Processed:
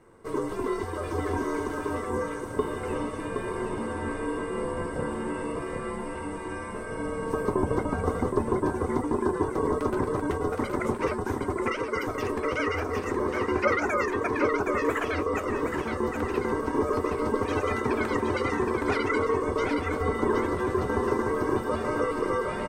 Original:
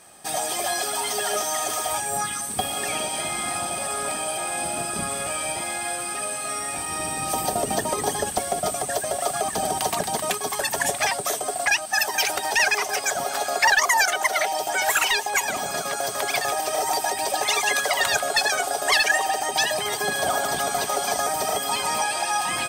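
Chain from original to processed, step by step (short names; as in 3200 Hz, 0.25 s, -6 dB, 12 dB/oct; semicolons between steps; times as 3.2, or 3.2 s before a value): spectral gate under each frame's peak -30 dB strong; EQ curve 1100 Hz 0 dB, 1800 Hz -4 dB, 3000 Hz -16 dB, 12000 Hz -21 dB; ring modulator 330 Hz; resonant low shelf 570 Hz +6 dB, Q 1.5; flange 0.28 Hz, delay 8.7 ms, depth 4.8 ms, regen -54%; echo 0.769 s -5 dB; gain +2 dB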